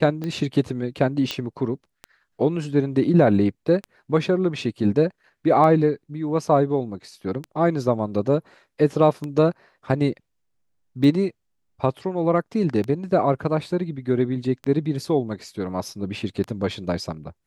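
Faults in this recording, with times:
scratch tick 33 1/3 rpm −18 dBFS
0:01.31: click −11 dBFS

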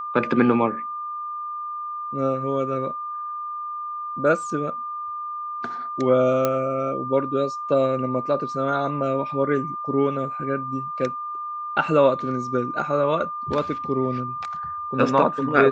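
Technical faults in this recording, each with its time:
whistle 1,200 Hz −28 dBFS
0:06.45: click −7 dBFS

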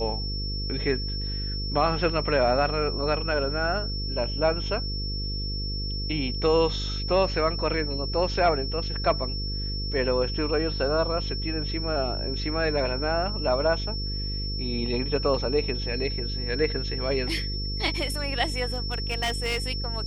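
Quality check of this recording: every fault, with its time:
mains buzz 50 Hz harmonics 10 −31 dBFS
whistle 5,400 Hz −33 dBFS
0:18.65–0:19.64: clipping −22 dBFS

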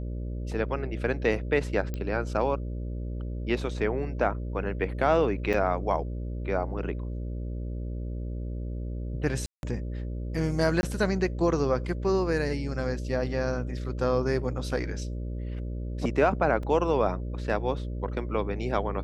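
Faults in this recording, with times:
mains buzz 60 Hz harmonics 10 −33 dBFS
0:01.94: click −20 dBFS
0:05.53–0:05.54: drop-out 7 ms
0:09.46–0:09.63: drop-out 171 ms
0:10.81–0:10.83: drop-out 21 ms
0:16.63: drop-out 2.6 ms

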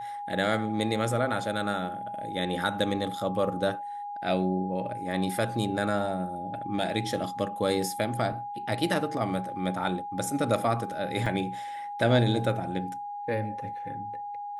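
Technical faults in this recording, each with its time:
whistle 820 Hz −34 dBFS
0:11.26: drop-out 3.8 ms

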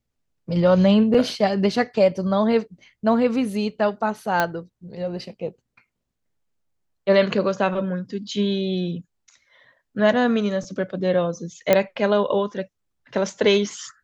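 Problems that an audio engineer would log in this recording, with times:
0:01.14–0:01.15: drop-out 5.5 ms
0:04.40: click −6 dBFS
0:11.73: click −3 dBFS

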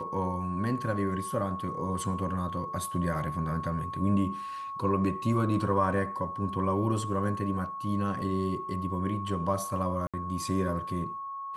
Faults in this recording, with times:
whistle 1,100 Hz −35 dBFS
0:10.07–0:10.14: drop-out 66 ms

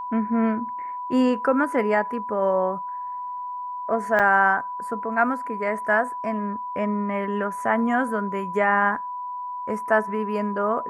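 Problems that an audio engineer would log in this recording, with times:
whistle 990 Hz −29 dBFS
0:04.19–0:04.20: drop-out 7.1 ms

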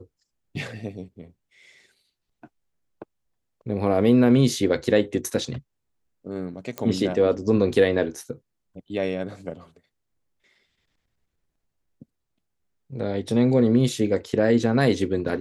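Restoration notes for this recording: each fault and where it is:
0:06.78: click −14 dBFS

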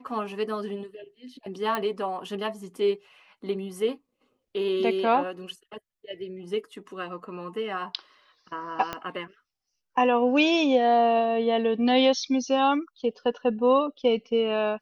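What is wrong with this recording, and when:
0:01.75: click −14 dBFS
0:08.93: click −15 dBFS

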